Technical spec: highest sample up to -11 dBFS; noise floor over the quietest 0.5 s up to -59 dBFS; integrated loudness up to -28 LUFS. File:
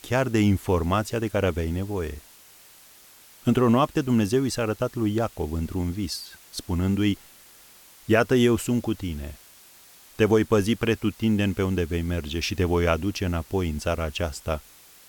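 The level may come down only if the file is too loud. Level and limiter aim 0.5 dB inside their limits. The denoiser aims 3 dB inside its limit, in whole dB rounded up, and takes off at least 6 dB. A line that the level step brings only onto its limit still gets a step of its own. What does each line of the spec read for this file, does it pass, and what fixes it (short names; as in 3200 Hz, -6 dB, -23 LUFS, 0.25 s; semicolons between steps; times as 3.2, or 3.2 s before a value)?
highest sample -7.0 dBFS: fail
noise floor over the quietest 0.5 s -51 dBFS: fail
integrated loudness -25.0 LUFS: fail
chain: denoiser 8 dB, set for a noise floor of -51 dBFS; gain -3.5 dB; limiter -11.5 dBFS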